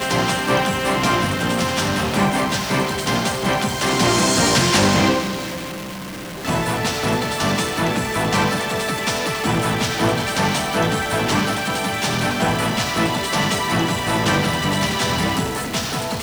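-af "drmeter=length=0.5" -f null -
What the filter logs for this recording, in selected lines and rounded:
Channel 1: DR: 10.0
Overall DR: 10.0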